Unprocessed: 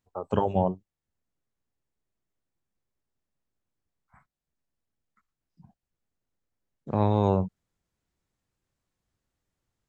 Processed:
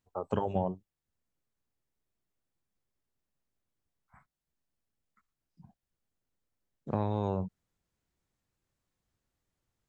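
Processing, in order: compressor 6:1, threshold -24 dBFS, peak gain reduction 7.5 dB; gain -1.5 dB

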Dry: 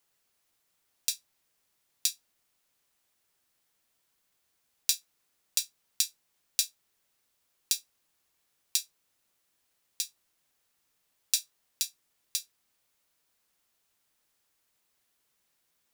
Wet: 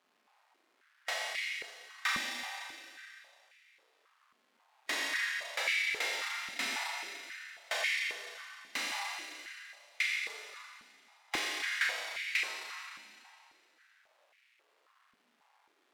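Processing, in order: cycle switcher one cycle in 2, muted; bell 7000 Hz -10.5 dB 2.2 oct; vibrato 12 Hz 82 cents; air absorption 50 m; Schroeder reverb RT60 2.4 s, combs from 29 ms, DRR 3 dB; overdrive pedal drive 18 dB, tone 4700 Hz, clips at -25 dBFS; harmonic-percussive split percussive -7 dB; stepped high-pass 3.7 Hz 230–2200 Hz; gain +5 dB

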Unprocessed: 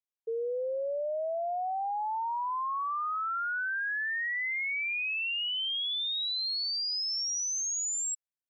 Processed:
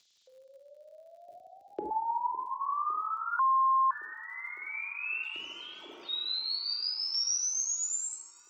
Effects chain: 5.23–6.09 median filter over 25 samples; LFO high-pass square 0.28 Hz 290–3700 Hz; shoebox room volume 1300 m³, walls mixed, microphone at 2.4 m; upward compressor, threshold -37 dBFS; downsampling 16000 Hz; crackle 60/s -50 dBFS; frequency shift +58 Hz; 1.28–1.91 resonant low shelf 650 Hz +12 dB, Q 3; darkening echo 0.557 s, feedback 81%, low-pass 3100 Hz, level -20 dB; 3.39–3.91 bleep 1060 Hz -16.5 dBFS; gain -5.5 dB

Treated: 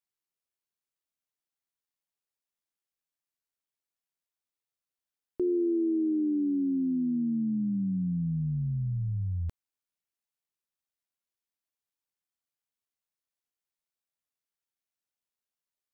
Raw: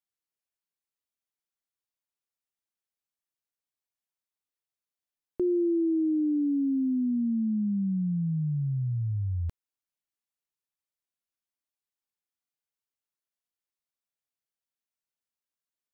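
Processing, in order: AM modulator 85 Hz, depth 20%

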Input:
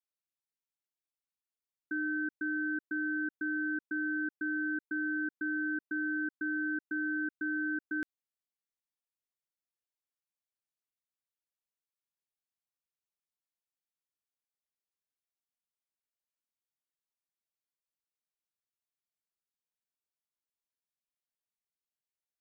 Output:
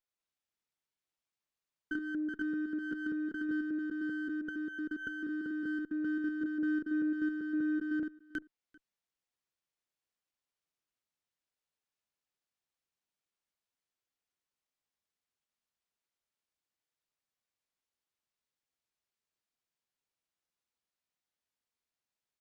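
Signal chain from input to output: reverse delay 0.195 s, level 0 dB; 1.93–3.49 comb 4.9 ms, depth 33%; treble ducked by the level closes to 770 Hz, closed at -30.5 dBFS; echo 0.392 s -23.5 dB; running maximum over 3 samples

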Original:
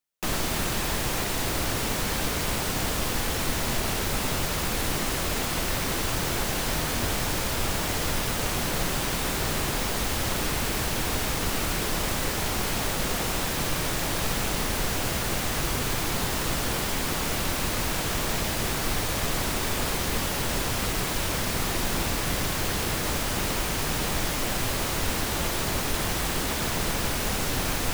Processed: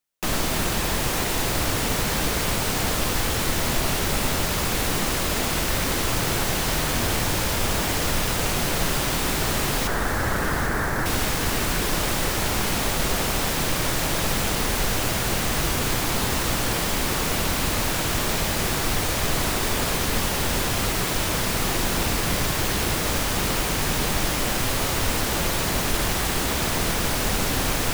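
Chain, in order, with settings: 9.87–11.06 resonant high shelf 2200 Hz -9 dB, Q 3; split-band echo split 1100 Hz, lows 88 ms, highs 0.79 s, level -9 dB; gain +3 dB

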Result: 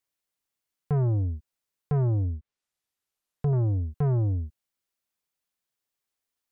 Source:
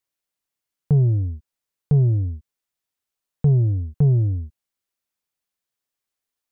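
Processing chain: soft clip -20.5 dBFS, distortion -11 dB; 2.24–3.53 treble ducked by the level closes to 680 Hz, closed at -25.5 dBFS; gain -1 dB

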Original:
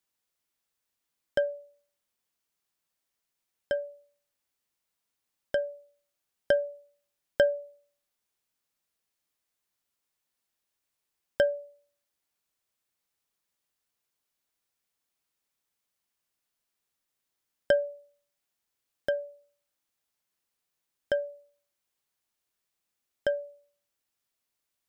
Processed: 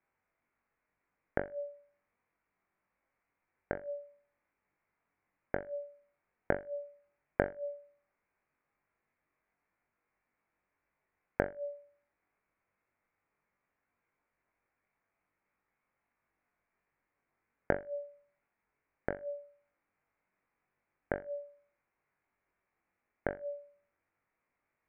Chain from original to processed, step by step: flipped gate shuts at -24 dBFS, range -31 dB; elliptic low-pass 2300 Hz; flutter echo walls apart 3.6 m, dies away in 0.24 s; gain +7 dB

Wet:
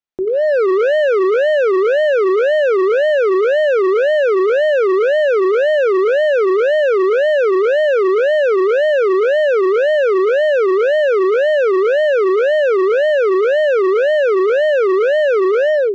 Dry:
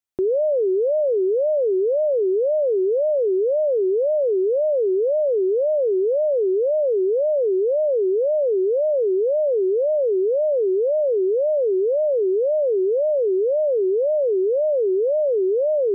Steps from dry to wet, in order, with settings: bell 91 Hz -14.5 dB 0.4 oct; notches 50/100/150/200/250/300/350/400 Hz; AGC gain up to 15 dB; overloaded stage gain 13 dB; air absorption 120 m; gain +1 dB

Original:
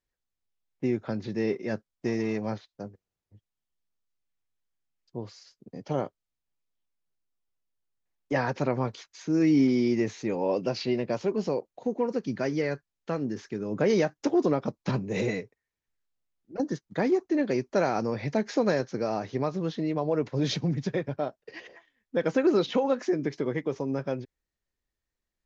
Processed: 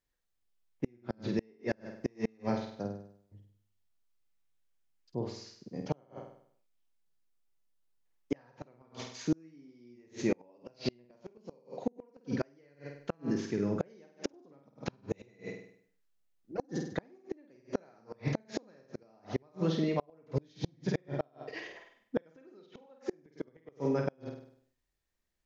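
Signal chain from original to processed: flutter echo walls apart 8.5 m, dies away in 0.61 s; flipped gate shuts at -18 dBFS, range -35 dB

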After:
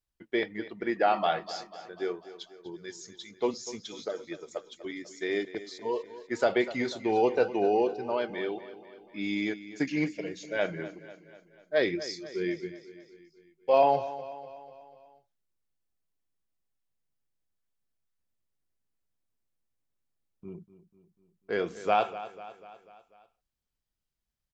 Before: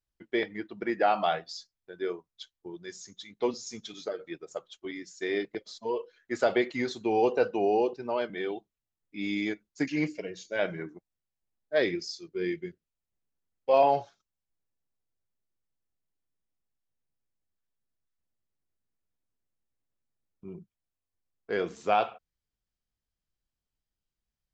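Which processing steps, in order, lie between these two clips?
feedback echo 0.246 s, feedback 55%, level -15 dB

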